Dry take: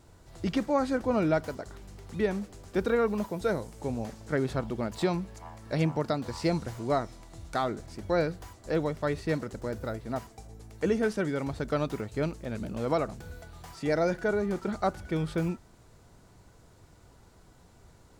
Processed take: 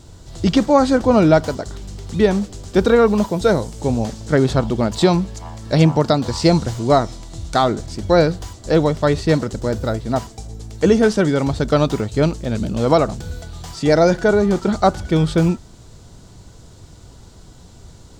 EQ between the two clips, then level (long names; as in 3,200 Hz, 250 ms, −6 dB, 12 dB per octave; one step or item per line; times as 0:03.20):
dynamic equaliser 890 Hz, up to +5 dB, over −39 dBFS, Q 0.77
low-shelf EQ 370 Hz +8 dB
flat-topped bell 5,000 Hz +8.5 dB
+7.5 dB